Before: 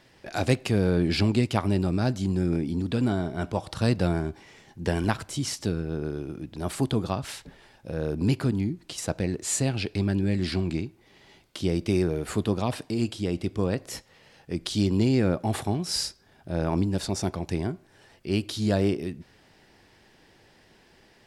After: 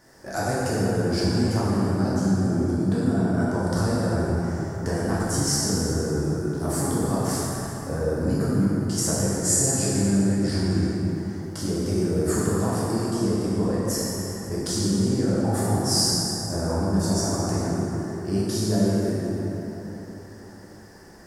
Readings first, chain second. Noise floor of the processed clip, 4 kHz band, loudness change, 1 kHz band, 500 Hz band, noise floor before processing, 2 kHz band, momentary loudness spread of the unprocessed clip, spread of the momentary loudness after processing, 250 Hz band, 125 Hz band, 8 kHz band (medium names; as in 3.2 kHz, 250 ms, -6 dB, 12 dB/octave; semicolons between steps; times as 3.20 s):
-43 dBFS, +4.0 dB, +3.5 dB, +4.0 dB, +3.5 dB, -59 dBFS, +1.5 dB, 11 LU, 8 LU, +3.5 dB, +3.0 dB, +10.0 dB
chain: high-order bell 3 kHz -15 dB 1.1 oct; compression, threshold -28 dBFS, peak gain reduction 11.5 dB; treble shelf 4 kHz +7 dB; plate-style reverb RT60 4 s, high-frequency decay 0.5×, DRR -8.5 dB